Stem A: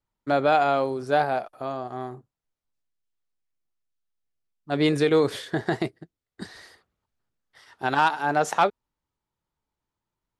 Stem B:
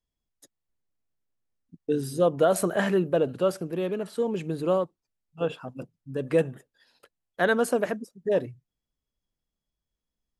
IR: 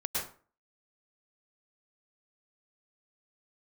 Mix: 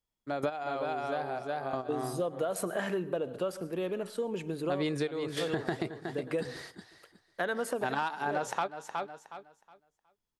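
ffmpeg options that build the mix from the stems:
-filter_complex "[0:a]volume=1.26,asplit=2[s0][s1];[s1]volume=0.188[s2];[1:a]lowshelf=f=220:g=-8,acontrast=49,volume=0.398,asplit=3[s3][s4][s5];[s4]volume=0.0841[s6];[s5]apad=whole_len=458393[s7];[s0][s7]sidechaingate=range=0.251:threshold=0.00112:ratio=16:detection=peak[s8];[2:a]atrim=start_sample=2205[s9];[s6][s9]afir=irnorm=-1:irlink=0[s10];[s2]aecho=0:1:366|732|1098|1464:1|0.23|0.0529|0.0122[s11];[s8][s3][s10][s11]amix=inputs=4:normalize=0,acompressor=threshold=0.0355:ratio=6"

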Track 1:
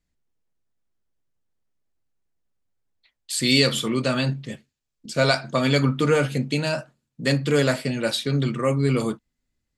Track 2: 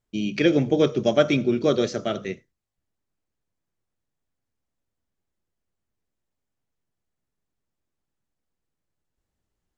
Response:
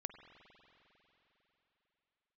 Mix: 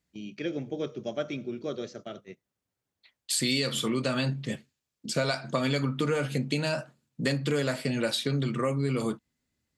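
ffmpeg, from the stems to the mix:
-filter_complex "[0:a]acompressor=threshold=0.0447:ratio=5,volume=1.26[s0];[1:a]agate=range=0.2:threshold=0.0355:ratio=16:detection=peak,volume=0.211[s1];[s0][s1]amix=inputs=2:normalize=0,highpass=81"

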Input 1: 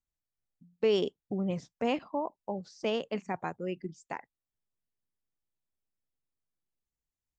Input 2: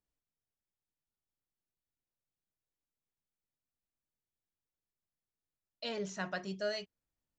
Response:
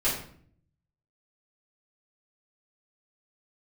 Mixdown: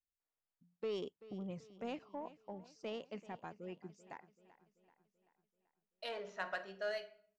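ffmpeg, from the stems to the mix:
-filter_complex "[0:a]asoftclip=type=tanh:threshold=0.106,volume=0.251,asplit=2[s0][s1];[s1]volume=0.133[s2];[1:a]highpass=580,adynamicsmooth=sensitivity=3:basefreq=2200,adelay=200,volume=0.944,asplit=2[s3][s4];[s4]volume=0.133[s5];[2:a]atrim=start_sample=2205[s6];[s5][s6]afir=irnorm=-1:irlink=0[s7];[s2]aecho=0:1:385|770|1155|1540|1925|2310|2695|3080:1|0.52|0.27|0.141|0.0731|0.038|0.0198|0.0103[s8];[s0][s3][s7][s8]amix=inputs=4:normalize=0"

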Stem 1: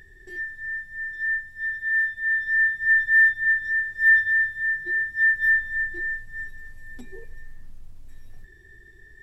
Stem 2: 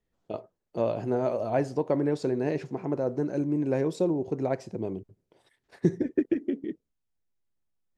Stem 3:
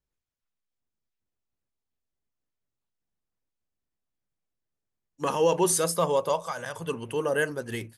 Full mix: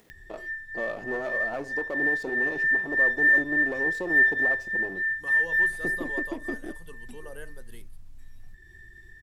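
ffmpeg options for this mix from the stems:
-filter_complex "[0:a]equalizer=f=460:t=o:w=0.53:g=-12.5,adelay=100,volume=0.708[s0];[1:a]aeval=exprs='if(lt(val(0),0),0.251*val(0),val(0))':c=same,highpass=200,alimiter=limit=0.075:level=0:latency=1:release=125,volume=1[s1];[2:a]acrossover=split=3000[s2][s3];[s3]acompressor=threshold=0.01:ratio=4:attack=1:release=60[s4];[s2][s4]amix=inputs=2:normalize=0,equalizer=f=6300:t=o:w=0.77:g=-8,aexciter=amount=1.9:drive=8.5:freq=3500,volume=0.133[s5];[s0][s1][s5]amix=inputs=3:normalize=0,acompressor=mode=upward:threshold=0.00891:ratio=2.5"

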